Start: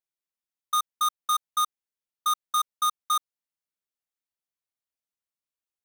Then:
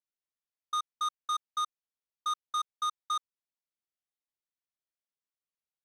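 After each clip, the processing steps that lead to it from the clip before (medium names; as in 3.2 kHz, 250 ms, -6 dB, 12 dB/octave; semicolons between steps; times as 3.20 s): low-pass 6.3 kHz 12 dB/octave; trim -6.5 dB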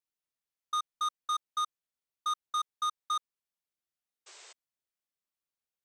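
painted sound noise, 4.26–4.53 s, 340–8400 Hz -53 dBFS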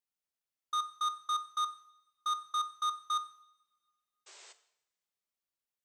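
two-slope reverb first 0.7 s, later 2 s, from -20 dB, DRR 11 dB; trim -2 dB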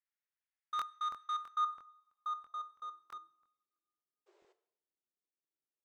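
band-pass sweep 1.8 kHz -> 330 Hz, 1.39–3.27 s; crackling interface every 0.33 s, samples 1024, repeat, from 0.44 s; trim +3 dB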